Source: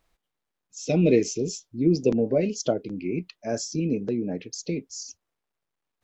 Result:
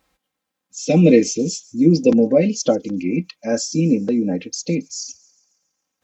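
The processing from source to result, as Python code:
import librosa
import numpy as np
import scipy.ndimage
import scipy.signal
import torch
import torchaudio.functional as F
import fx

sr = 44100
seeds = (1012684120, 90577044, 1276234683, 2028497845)

y = scipy.signal.sosfilt(scipy.signal.butter(2, 70.0, 'highpass', fs=sr, output='sos'), x)
y = fx.peak_eq(y, sr, hz=160.0, db=9.0, octaves=0.24)
y = y + 0.76 * np.pad(y, (int(3.8 * sr / 1000.0), 0))[:len(y)]
y = fx.echo_wet_highpass(y, sr, ms=137, feedback_pct=52, hz=5600.0, wet_db=-19.0)
y = y * 10.0 ** (5.5 / 20.0)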